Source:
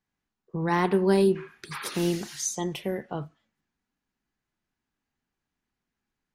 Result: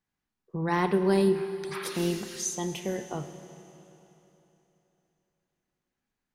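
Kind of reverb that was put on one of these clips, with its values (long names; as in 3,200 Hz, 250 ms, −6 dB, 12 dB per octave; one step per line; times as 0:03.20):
four-comb reverb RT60 3.3 s, combs from 25 ms, DRR 9.5 dB
level −2 dB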